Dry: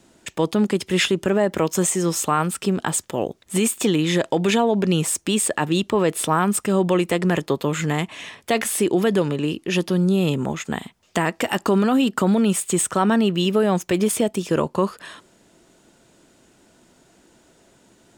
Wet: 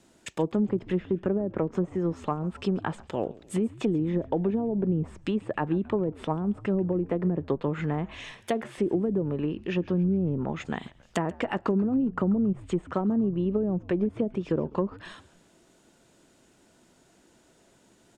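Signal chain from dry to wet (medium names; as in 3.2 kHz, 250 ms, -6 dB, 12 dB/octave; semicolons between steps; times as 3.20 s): low-pass that closes with the level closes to 370 Hz, closed at -14.5 dBFS; frequency-shifting echo 137 ms, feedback 53%, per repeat -92 Hz, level -21 dB; trim -5.5 dB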